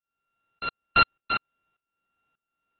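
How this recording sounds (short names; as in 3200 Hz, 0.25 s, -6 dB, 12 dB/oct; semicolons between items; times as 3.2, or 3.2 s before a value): a buzz of ramps at a fixed pitch in blocks of 32 samples; tremolo saw up 1.7 Hz, depth 95%; AAC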